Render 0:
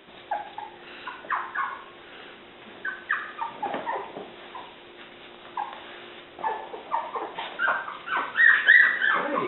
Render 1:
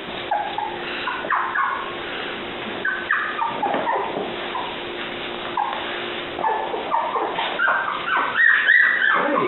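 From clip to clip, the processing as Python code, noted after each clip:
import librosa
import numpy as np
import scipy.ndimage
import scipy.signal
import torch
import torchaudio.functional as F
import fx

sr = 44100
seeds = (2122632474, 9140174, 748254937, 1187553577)

y = fx.env_flatten(x, sr, amount_pct=50)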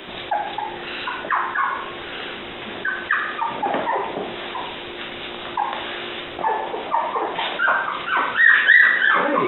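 y = fx.band_widen(x, sr, depth_pct=40)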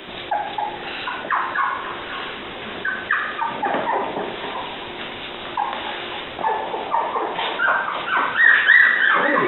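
y = fx.echo_alternate(x, sr, ms=271, hz=850.0, feedback_pct=60, wet_db=-7)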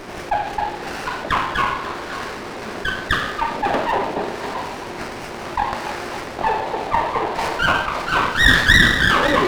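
y = fx.running_max(x, sr, window=9)
y = F.gain(torch.from_numpy(y), 2.5).numpy()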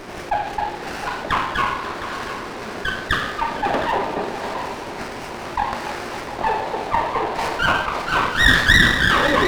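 y = x + 10.0 ** (-12.0 / 20.0) * np.pad(x, (int(712 * sr / 1000.0), 0))[:len(x)]
y = F.gain(torch.from_numpy(y), -1.0).numpy()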